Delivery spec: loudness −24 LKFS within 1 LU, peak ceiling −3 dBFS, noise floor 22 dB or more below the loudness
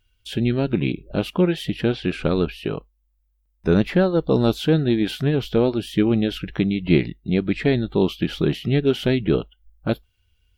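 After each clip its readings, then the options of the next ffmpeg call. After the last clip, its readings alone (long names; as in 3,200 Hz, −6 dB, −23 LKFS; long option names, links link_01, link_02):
integrated loudness −22.0 LKFS; sample peak −4.0 dBFS; target loudness −24.0 LKFS
→ -af "volume=-2dB"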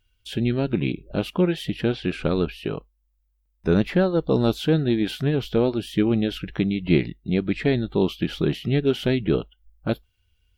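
integrated loudness −24.0 LKFS; sample peak −6.0 dBFS; background noise floor −69 dBFS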